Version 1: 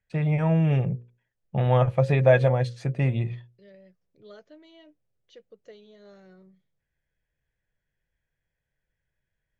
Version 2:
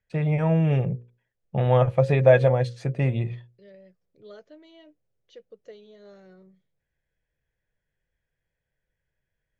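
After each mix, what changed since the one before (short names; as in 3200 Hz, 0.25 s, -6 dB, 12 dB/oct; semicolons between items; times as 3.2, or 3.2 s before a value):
master: add bell 480 Hz +3.5 dB 0.79 oct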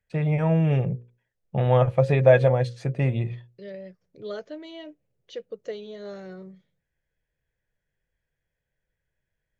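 second voice +11.0 dB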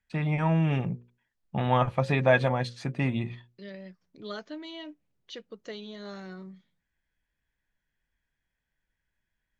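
master: add graphic EQ 125/250/500/1000/4000 Hz -8/+7/-12/+6/+4 dB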